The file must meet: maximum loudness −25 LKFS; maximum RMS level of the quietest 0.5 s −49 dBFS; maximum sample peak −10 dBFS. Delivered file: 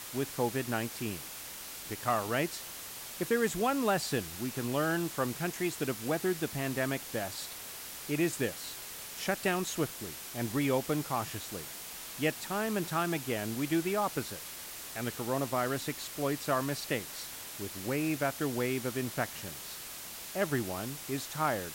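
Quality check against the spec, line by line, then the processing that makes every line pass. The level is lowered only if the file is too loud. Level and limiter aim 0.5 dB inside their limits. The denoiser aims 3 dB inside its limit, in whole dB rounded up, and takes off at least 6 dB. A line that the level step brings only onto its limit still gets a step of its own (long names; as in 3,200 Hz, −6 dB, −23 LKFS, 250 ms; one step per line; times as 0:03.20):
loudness −34.0 LKFS: in spec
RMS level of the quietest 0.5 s −44 dBFS: out of spec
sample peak −17.0 dBFS: in spec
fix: broadband denoise 8 dB, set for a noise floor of −44 dBFS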